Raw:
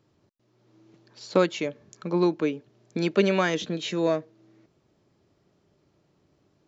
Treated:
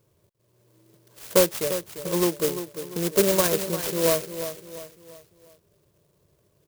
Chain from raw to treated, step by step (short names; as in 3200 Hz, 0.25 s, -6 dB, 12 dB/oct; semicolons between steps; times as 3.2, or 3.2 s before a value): comb 1.9 ms, depth 71%; feedback echo 0.347 s, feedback 42%, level -10.5 dB; clock jitter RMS 0.15 ms